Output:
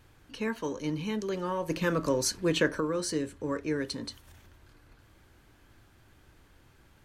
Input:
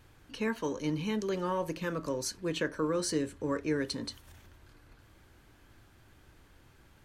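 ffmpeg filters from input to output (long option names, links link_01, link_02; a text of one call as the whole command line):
ffmpeg -i in.wav -filter_complex "[0:a]asplit=3[link_01][link_02][link_03];[link_01]afade=type=out:start_time=1.69:duration=0.02[link_04];[link_02]acontrast=67,afade=type=in:start_time=1.69:duration=0.02,afade=type=out:start_time=2.79:duration=0.02[link_05];[link_03]afade=type=in:start_time=2.79:duration=0.02[link_06];[link_04][link_05][link_06]amix=inputs=3:normalize=0" out.wav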